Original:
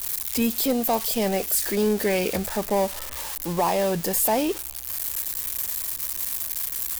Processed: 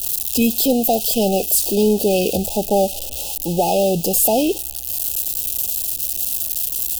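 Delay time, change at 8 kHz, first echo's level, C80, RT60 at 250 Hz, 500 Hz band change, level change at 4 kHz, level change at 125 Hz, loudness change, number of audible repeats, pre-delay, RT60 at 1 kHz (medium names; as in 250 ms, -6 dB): no echo, +6.5 dB, no echo, no reverb, no reverb, +6.5 dB, +6.5 dB, +6.5 dB, +6.5 dB, no echo, no reverb, no reverb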